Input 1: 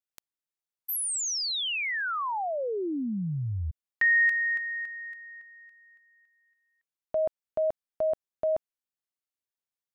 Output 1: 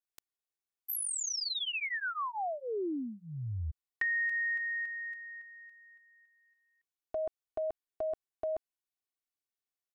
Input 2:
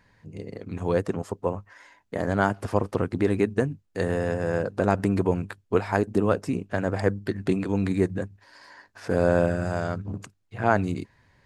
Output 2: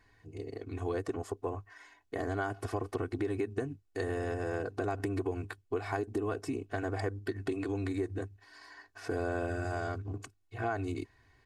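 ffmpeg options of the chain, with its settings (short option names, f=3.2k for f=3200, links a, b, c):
-af "aecho=1:1:2.7:0.99,acompressor=threshold=-25dB:ratio=6:attack=24:release=80:knee=6:detection=rms,volume=-6.5dB"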